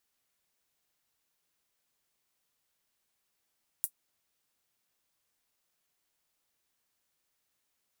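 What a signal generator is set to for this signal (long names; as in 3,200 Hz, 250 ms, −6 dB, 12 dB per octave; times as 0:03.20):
closed synth hi-hat, high-pass 9,800 Hz, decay 0.08 s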